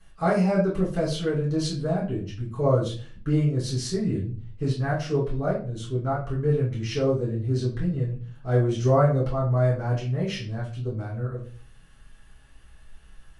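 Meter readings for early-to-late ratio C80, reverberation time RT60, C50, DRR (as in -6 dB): 11.5 dB, 0.40 s, 6.5 dB, -8.0 dB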